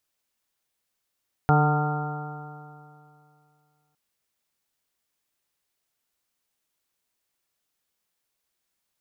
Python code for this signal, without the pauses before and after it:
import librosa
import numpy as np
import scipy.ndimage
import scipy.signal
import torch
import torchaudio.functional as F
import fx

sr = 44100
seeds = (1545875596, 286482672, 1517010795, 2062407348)

y = fx.additive_stiff(sr, length_s=2.46, hz=148.0, level_db=-17.0, upper_db=(-10, -9.0, -17.0, -3.5, -9.5, -20, -14, -7), decay_s=2.54, stiffness=0.001)